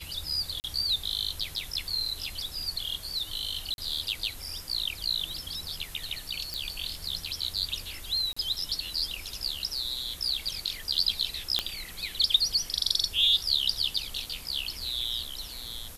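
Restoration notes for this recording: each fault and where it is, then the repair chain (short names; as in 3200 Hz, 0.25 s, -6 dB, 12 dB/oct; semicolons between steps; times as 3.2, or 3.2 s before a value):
0.6–0.64 gap 39 ms
3.74–3.78 gap 41 ms
6.54 pop
8.33–8.37 gap 35 ms
11.59 pop -9 dBFS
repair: de-click; interpolate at 0.6, 39 ms; interpolate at 3.74, 41 ms; interpolate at 8.33, 35 ms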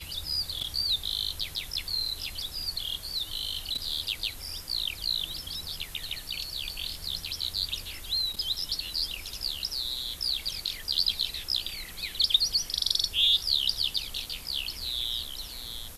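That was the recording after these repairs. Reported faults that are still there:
none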